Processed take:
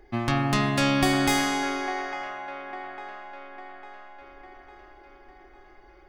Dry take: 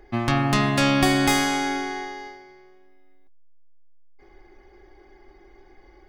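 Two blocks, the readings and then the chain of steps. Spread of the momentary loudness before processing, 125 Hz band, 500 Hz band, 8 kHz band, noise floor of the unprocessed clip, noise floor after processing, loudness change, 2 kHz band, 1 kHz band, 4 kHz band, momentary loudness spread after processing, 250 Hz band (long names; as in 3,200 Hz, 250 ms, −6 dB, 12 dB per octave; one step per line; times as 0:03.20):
14 LU, −3.0 dB, −2.5 dB, −3.0 dB, −53 dBFS, −53 dBFS, −4.5 dB, −2.5 dB, −2.0 dB, −3.0 dB, 21 LU, −3.0 dB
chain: delay with a band-pass on its return 852 ms, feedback 52%, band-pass 1,000 Hz, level −7 dB
level −3 dB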